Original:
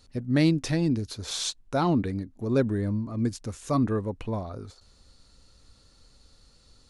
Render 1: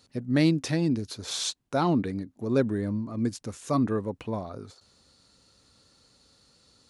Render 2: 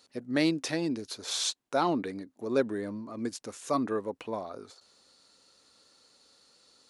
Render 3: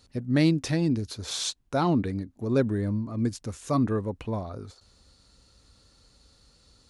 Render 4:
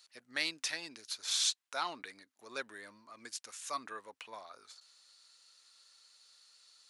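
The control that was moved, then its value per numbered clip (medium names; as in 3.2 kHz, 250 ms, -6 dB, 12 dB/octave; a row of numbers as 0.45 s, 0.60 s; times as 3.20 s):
high-pass, cutoff frequency: 120 Hz, 340 Hz, 41 Hz, 1.5 kHz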